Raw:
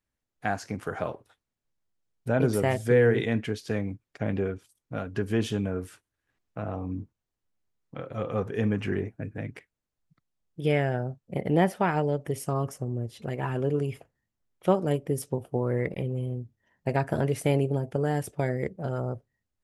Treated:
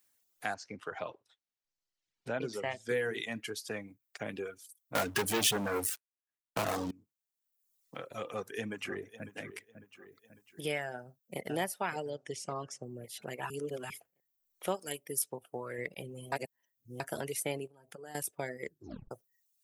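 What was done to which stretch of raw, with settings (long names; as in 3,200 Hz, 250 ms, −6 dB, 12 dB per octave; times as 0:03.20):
0:00.54–0:02.89: high-frequency loss of the air 160 metres
0:04.95–0:06.91: leveller curve on the samples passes 5
0:08.28–0:09.32: delay throw 550 ms, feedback 30%, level −12.5 dB
0:10.93–0:11.40: delay throw 560 ms, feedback 40%, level −5 dB
0:12.10–0:12.83: low-pass filter 6,600 Hz 24 dB per octave
0:13.50–0:13.90: reverse
0:14.79–0:15.78: tilt shelving filter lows −4.5 dB
0:16.32–0:17.00: reverse
0:17.67–0:18.15: downward compressor 5 to 1, threshold −37 dBFS
0:18.66: tape stop 0.45 s
whole clip: RIAA equalisation recording; reverb reduction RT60 1 s; multiband upward and downward compressor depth 40%; level −6 dB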